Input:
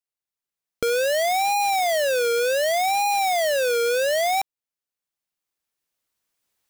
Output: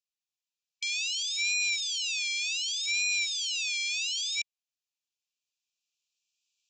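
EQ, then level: brick-wall FIR high-pass 2.3 kHz; Chebyshev low-pass 7.4 kHz, order 6; +1.5 dB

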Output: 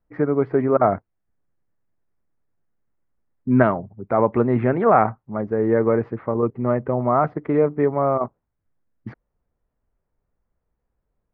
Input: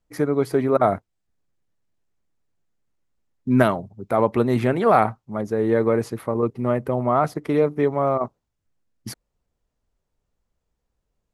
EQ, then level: low-pass 2 kHz 24 dB/octave; +1.0 dB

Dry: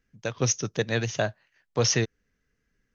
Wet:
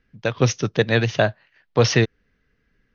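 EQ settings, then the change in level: low-pass 4.5 kHz 24 dB/octave; +8.0 dB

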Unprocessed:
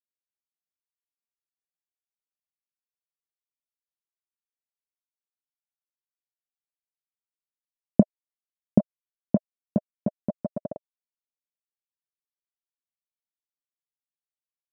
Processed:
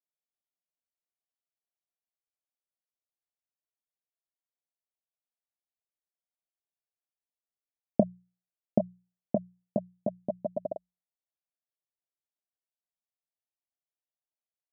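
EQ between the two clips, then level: resonant low-pass 690 Hz, resonance Q 3.5; hum notches 60/120/180 Hz; -8.0 dB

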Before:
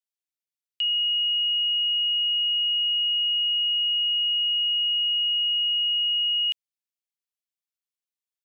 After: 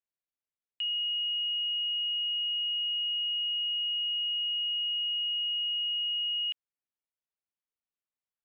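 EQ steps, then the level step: distance through air 420 m; 0.0 dB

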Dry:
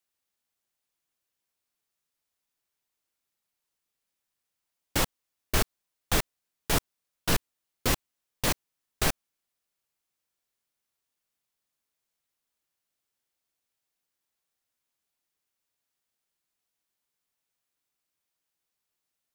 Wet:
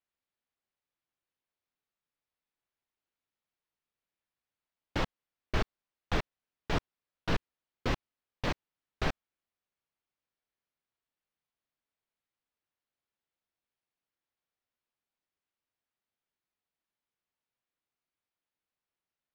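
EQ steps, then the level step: distance through air 220 m; -3.0 dB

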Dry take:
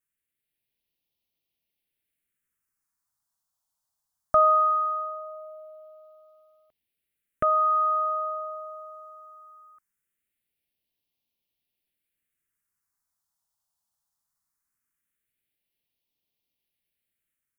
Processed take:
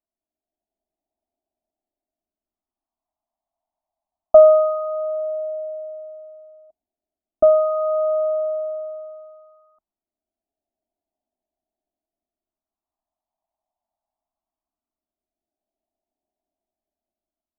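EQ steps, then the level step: resonant low-pass 650 Hz, resonance Q 7.1; hum notches 50/100/150/200 Hz; static phaser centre 500 Hz, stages 6; +4.0 dB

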